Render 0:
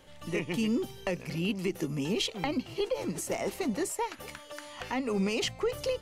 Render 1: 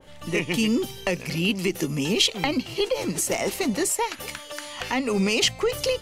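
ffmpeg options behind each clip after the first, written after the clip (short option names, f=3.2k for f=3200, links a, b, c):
-af "adynamicequalizer=threshold=0.00355:dfrequency=1900:dqfactor=0.7:tfrequency=1900:tqfactor=0.7:attack=5:release=100:ratio=0.375:range=3:mode=boostabove:tftype=highshelf,volume=6dB"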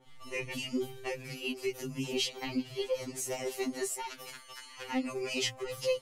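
-af "afftfilt=real='re*2.45*eq(mod(b,6),0)':imag='im*2.45*eq(mod(b,6),0)':win_size=2048:overlap=0.75,volume=-9dB"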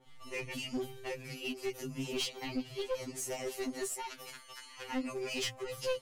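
-af "aeval=exprs='clip(val(0),-1,0.0251)':c=same,volume=-2dB"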